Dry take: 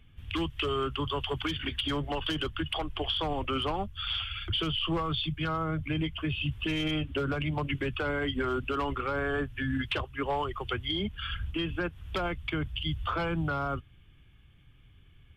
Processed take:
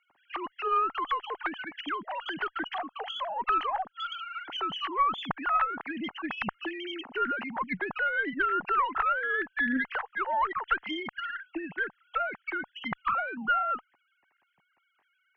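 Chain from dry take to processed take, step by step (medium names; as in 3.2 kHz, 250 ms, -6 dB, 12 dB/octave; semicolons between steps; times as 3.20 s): formants replaced by sine waves; high-order bell 1.2 kHz +11.5 dB; Chebyshev shaper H 2 -16 dB, 3 -44 dB, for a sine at -9 dBFS; trim -6.5 dB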